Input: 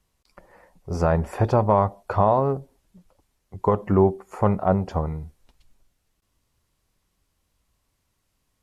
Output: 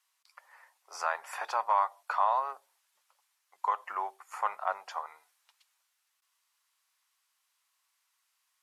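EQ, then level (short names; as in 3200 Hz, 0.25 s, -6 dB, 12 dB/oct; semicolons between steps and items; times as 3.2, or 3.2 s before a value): HPF 980 Hz 24 dB/oct; 0.0 dB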